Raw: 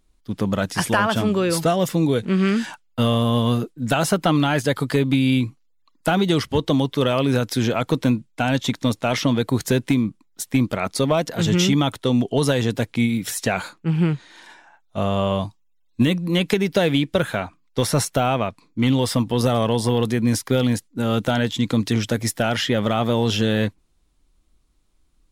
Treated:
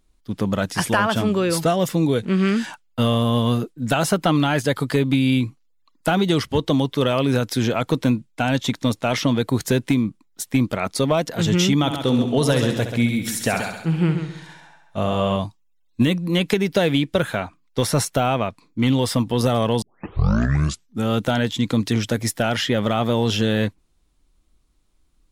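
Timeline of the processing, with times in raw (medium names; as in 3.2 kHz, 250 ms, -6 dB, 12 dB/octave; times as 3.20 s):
11.77–15.36 s: multi-head delay 67 ms, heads first and second, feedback 40%, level -9.5 dB
19.82 s: tape start 1.27 s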